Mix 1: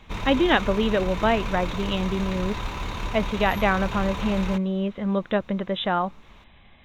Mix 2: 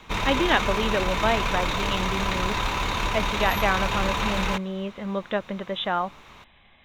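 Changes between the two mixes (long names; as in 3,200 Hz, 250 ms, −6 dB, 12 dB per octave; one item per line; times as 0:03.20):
background +8.5 dB
master: add low-shelf EQ 410 Hz −7.5 dB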